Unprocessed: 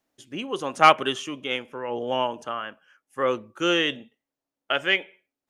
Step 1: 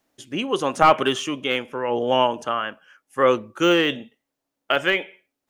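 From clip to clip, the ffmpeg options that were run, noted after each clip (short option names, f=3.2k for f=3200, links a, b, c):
-af "deesser=0.8,volume=6.5dB"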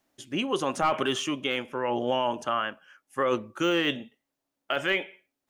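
-af "bandreject=f=470:w=12,alimiter=limit=-13dB:level=0:latency=1:release=19,volume=-2.5dB"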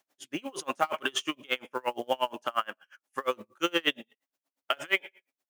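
-af "highpass=f=610:p=1,acrusher=bits=6:mode=log:mix=0:aa=0.000001,aeval=exprs='val(0)*pow(10,-33*(0.5-0.5*cos(2*PI*8.5*n/s))/20)':c=same,volume=5.5dB"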